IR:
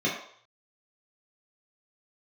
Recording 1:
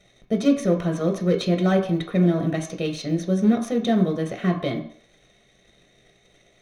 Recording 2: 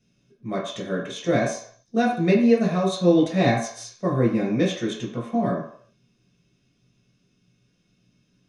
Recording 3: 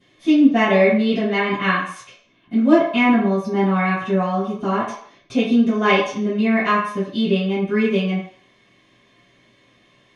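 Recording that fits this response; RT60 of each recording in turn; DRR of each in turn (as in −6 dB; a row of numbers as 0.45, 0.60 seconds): 2; 0.60, 0.60, 0.60 seconds; 2.5, −6.0, −16.0 decibels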